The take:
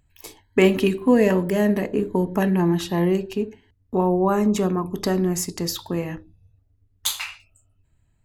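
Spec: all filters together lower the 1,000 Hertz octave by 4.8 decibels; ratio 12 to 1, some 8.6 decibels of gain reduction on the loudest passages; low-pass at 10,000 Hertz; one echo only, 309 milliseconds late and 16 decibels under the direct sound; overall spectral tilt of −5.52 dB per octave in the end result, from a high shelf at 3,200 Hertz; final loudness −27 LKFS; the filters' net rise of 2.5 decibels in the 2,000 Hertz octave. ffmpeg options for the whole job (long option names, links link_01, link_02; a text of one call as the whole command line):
ffmpeg -i in.wav -af "lowpass=10000,equalizer=frequency=1000:width_type=o:gain=-7,equalizer=frequency=2000:width_type=o:gain=6,highshelf=frequency=3200:gain=-4,acompressor=threshold=-20dB:ratio=12,aecho=1:1:309:0.158,volume=-0.5dB" out.wav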